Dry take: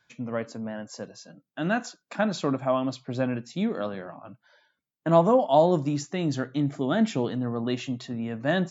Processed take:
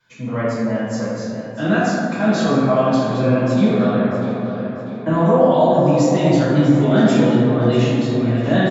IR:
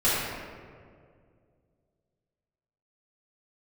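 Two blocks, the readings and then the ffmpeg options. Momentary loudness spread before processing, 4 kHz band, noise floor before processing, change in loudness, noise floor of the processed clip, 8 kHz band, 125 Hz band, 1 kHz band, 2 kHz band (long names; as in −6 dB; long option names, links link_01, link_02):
17 LU, +8.0 dB, −83 dBFS, +9.5 dB, −29 dBFS, can't be measured, +13.0 dB, +7.0 dB, +9.0 dB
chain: -filter_complex "[0:a]alimiter=limit=-17.5dB:level=0:latency=1:release=37,asplit=2[link_01][link_02];[link_02]adelay=644,lowpass=frequency=4800:poles=1,volume=-10dB,asplit=2[link_03][link_04];[link_04]adelay=644,lowpass=frequency=4800:poles=1,volume=0.54,asplit=2[link_05][link_06];[link_06]adelay=644,lowpass=frequency=4800:poles=1,volume=0.54,asplit=2[link_07][link_08];[link_08]adelay=644,lowpass=frequency=4800:poles=1,volume=0.54,asplit=2[link_09][link_10];[link_10]adelay=644,lowpass=frequency=4800:poles=1,volume=0.54,asplit=2[link_11][link_12];[link_12]adelay=644,lowpass=frequency=4800:poles=1,volume=0.54[link_13];[link_01][link_03][link_05][link_07][link_09][link_11][link_13]amix=inputs=7:normalize=0[link_14];[1:a]atrim=start_sample=2205,asetrate=37926,aresample=44100[link_15];[link_14][link_15]afir=irnorm=-1:irlink=0,volume=-5dB"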